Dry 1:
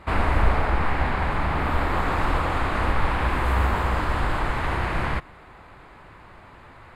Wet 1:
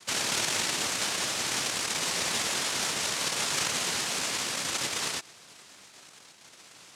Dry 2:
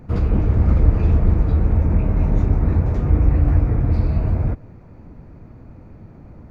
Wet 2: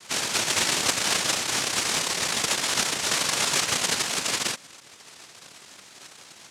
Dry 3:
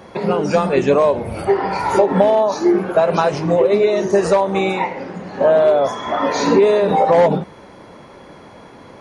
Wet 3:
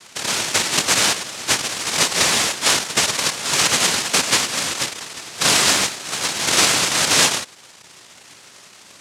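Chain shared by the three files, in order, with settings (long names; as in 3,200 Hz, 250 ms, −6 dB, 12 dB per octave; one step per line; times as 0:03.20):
sample-and-hold swept by an LFO 22×, swing 160% 0.67 Hz
cochlear-implant simulation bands 1
level −4 dB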